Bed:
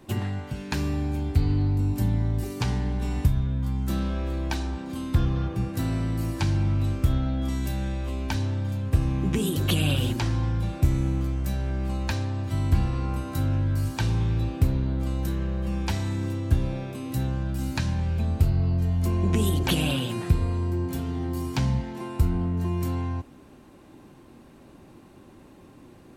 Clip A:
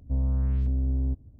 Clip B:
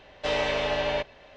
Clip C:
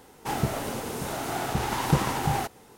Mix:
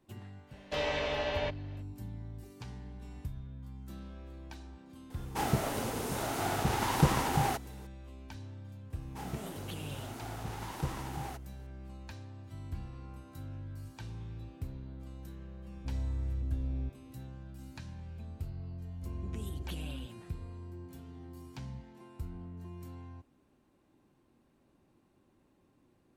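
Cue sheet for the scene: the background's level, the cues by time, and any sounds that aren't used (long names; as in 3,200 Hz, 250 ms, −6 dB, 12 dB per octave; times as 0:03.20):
bed −19 dB
0:00.48: mix in B −6.5 dB, fades 0.05 s
0:05.10: mix in C −3 dB
0:08.90: mix in C −14.5 dB
0:15.75: mix in A −9.5 dB
0:18.92: mix in A −17 dB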